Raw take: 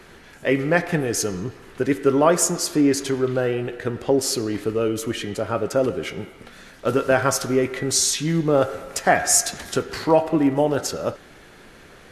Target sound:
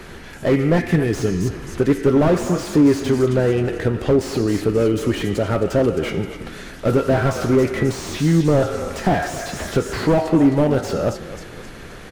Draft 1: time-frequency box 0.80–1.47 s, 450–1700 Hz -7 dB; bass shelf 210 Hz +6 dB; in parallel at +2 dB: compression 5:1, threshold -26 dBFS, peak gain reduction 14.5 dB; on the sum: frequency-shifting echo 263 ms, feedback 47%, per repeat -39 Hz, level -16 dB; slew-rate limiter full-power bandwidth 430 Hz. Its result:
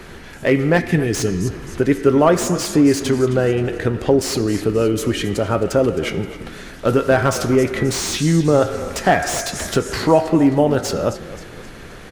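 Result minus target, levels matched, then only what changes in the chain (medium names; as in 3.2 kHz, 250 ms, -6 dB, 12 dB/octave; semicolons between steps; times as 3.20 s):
slew-rate limiter: distortion -7 dB
change: slew-rate limiter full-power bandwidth 119 Hz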